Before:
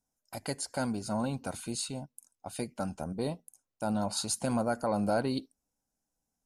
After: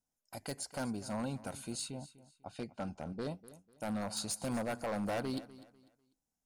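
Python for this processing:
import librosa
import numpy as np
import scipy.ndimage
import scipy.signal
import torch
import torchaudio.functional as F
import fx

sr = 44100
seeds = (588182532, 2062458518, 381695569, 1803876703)

p1 = 10.0 ** (-24.5 / 20.0) * (np.abs((x / 10.0 ** (-24.5 / 20.0) + 3.0) % 4.0 - 2.0) - 1.0)
p2 = fx.lowpass(p1, sr, hz=fx.line((1.89, 3000.0), (3.29, 6800.0)), slope=12, at=(1.89, 3.29), fade=0.02)
p3 = p2 + fx.echo_feedback(p2, sr, ms=248, feedback_pct=29, wet_db=-17.5, dry=0)
y = p3 * 10.0 ** (-5.0 / 20.0)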